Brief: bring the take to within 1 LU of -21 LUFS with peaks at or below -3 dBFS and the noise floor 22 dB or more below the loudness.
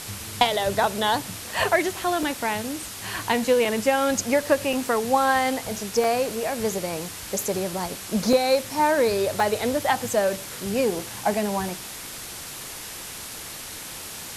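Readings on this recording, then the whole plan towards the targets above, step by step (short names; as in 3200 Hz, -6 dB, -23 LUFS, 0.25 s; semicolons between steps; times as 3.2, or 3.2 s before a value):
dropouts 8; longest dropout 2.1 ms; noise floor -37 dBFS; noise floor target -47 dBFS; loudness -24.5 LUFS; peak -7.0 dBFS; loudness target -21.0 LUFS
-> interpolate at 1.53/2.23/3.65/4.73/6.04/8.33/9.4/10.99, 2.1 ms; noise print and reduce 10 dB; gain +3.5 dB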